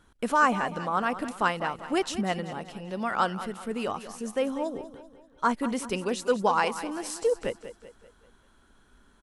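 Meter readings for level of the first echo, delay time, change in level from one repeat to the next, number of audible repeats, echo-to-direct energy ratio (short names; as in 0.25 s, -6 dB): -13.0 dB, 0.193 s, -6.5 dB, 4, -12.0 dB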